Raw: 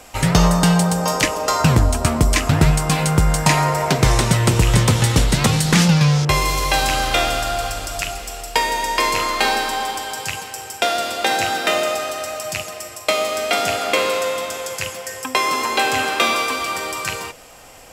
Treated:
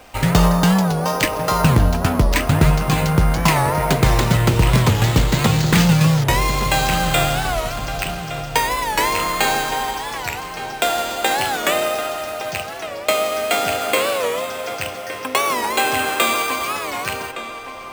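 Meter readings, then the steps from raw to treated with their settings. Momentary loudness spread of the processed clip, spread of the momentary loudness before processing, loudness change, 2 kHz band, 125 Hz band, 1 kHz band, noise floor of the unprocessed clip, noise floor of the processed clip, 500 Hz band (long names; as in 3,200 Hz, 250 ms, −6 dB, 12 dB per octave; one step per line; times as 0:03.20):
10 LU, 10 LU, 0.0 dB, 0.0 dB, 0.0 dB, +0.5 dB, −37 dBFS, −31 dBFS, +0.5 dB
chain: bad sample-rate conversion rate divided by 4×, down filtered, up hold
feedback echo with a low-pass in the loop 1,165 ms, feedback 43%, low-pass 3,200 Hz, level −11 dB
wow of a warped record 45 rpm, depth 160 cents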